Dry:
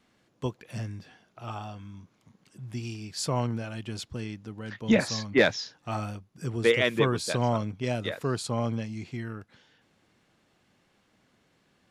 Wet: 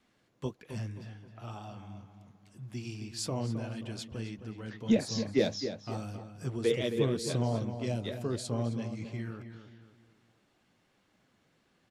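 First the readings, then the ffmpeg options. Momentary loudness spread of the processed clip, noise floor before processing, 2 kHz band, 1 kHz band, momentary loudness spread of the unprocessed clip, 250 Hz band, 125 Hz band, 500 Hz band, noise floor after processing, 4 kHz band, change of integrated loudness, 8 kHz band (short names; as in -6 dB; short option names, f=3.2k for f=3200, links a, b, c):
17 LU, -68 dBFS, -13.5 dB, -10.0 dB, 16 LU, -3.0 dB, -3.0 dB, -5.0 dB, -72 dBFS, -6.0 dB, -4.5 dB, -4.0 dB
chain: -filter_complex "[0:a]flanger=delay=2.4:depth=8:regen=-44:speed=1.8:shape=triangular,acrossover=split=680|3300[a][b][c];[b]acompressor=threshold=-49dB:ratio=6[d];[a][d][c]amix=inputs=3:normalize=0,asplit=2[e][f];[f]adelay=265,lowpass=f=2.9k:p=1,volume=-9dB,asplit=2[g][h];[h]adelay=265,lowpass=f=2.9k:p=1,volume=0.4,asplit=2[i][j];[j]adelay=265,lowpass=f=2.9k:p=1,volume=0.4,asplit=2[k][l];[l]adelay=265,lowpass=f=2.9k:p=1,volume=0.4[m];[e][g][i][k][m]amix=inputs=5:normalize=0"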